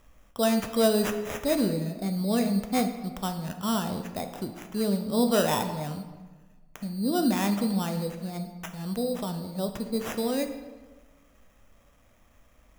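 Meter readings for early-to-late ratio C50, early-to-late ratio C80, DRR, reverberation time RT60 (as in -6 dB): 8.5 dB, 10.5 dB, 6.0 dB, 1.3 s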